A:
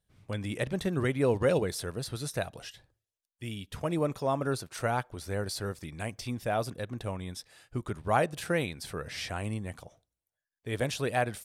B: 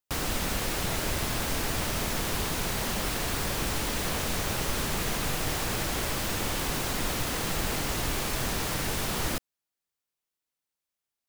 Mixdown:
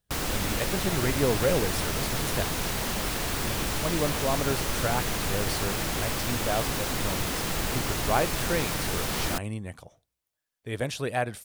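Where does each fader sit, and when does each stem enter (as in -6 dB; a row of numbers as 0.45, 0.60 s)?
+0.5, +0.5 dB; 0.00, 0.00 s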